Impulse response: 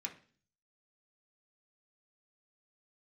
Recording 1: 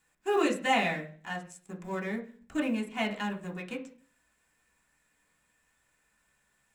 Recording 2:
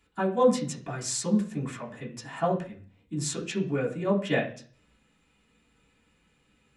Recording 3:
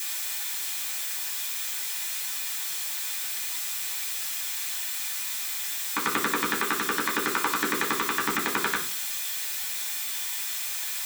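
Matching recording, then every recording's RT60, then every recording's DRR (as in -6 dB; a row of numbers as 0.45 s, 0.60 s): 1; 0.45 s, 0.45 s, 0.45 s; -1.0 dB, -7.0 dB, -16.0 dB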